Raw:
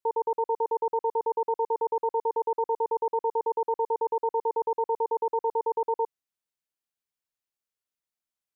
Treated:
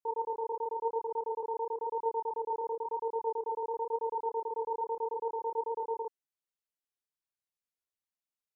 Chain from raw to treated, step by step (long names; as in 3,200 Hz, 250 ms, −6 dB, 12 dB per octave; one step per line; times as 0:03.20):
multi-voice chorus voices 2, 0.96 Hz, delay 27 ms, depth 3 ms
level −4 dB